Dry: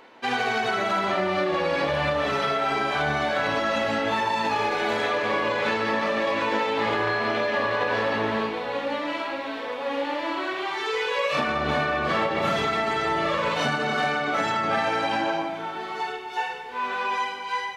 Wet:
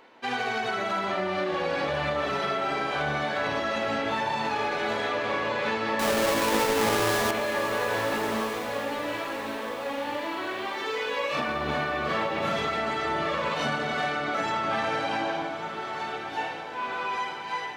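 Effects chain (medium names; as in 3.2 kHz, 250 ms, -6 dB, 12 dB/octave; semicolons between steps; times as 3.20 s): 5.99–7.31 s: square wave that keeps the level; echo that smears into a reverb 1296 ms, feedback 43%, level -9.5 dB; trim -4 dB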